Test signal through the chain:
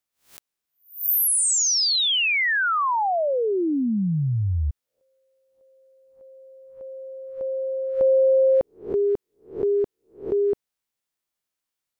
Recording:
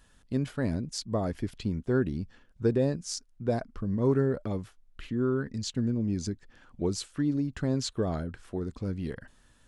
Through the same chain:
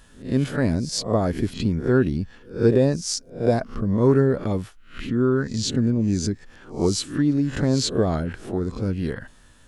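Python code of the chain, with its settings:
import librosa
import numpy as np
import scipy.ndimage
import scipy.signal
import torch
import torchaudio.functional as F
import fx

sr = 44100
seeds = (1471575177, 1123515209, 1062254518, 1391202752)

y = fx.spec_swells(x, sr, rise_s=0.36)
y = F.gain(torch.from_numpy(y), 7.5).numpy()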